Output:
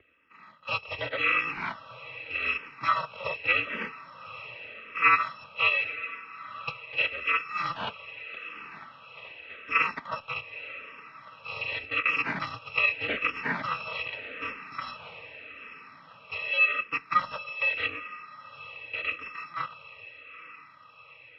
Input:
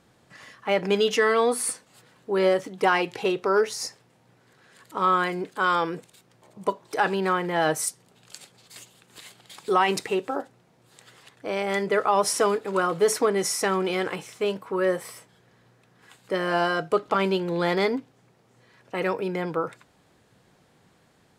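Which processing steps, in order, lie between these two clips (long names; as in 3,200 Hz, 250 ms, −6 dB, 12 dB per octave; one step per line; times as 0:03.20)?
samples in bit-reversed order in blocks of 256 samples
low-shelf EQ 140 Hz −8 dB
feedback delay with all-pass diffusion 873 ms, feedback 61%, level −14.5 dB
single-sideband voice off tune −140 Hz 220–3,000 Hz
frequency shifter mixed with the dry sound −0.84 Hz
level +8.5 dB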